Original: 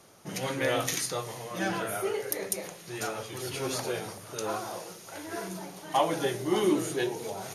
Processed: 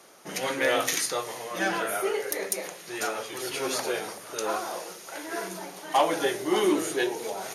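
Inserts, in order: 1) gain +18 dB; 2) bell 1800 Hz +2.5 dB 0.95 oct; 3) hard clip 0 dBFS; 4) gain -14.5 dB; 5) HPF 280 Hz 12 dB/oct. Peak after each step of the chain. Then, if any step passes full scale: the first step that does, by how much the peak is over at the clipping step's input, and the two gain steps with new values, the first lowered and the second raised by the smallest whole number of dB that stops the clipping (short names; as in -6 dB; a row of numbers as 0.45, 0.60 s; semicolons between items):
+9.0, +9.0, 0.0, -14.5, -11.5 dBFS; step 1, 9.0 dB; step 1 +9 dB, step 4 -5.5 dB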